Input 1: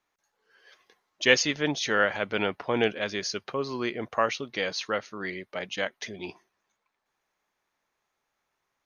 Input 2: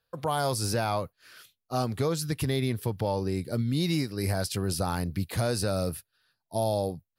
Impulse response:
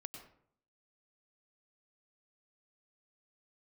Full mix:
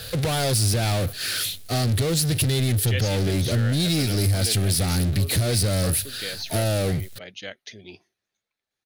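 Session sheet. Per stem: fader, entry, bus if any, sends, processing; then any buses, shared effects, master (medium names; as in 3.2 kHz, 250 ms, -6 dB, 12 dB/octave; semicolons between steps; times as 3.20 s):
-5.5 dB, 1.65 s, no send, none
+0.5 dB, 0.00 s, no send, power-law waveshaper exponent 0.35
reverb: none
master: fifteen-band graphic EQ 100 Hz +8 dB, 1 kHz -12 dB, 4 kHz +6 dB, 10 kHz +6 dB; compression 3:1, threshold -20 dBFS, peak gain reduction 6.5 dB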